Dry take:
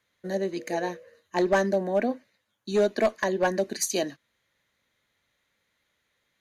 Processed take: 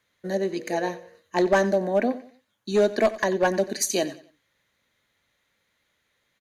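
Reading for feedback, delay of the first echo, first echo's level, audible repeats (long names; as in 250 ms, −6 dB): 33%, 91 ms, −17.0 dB, 2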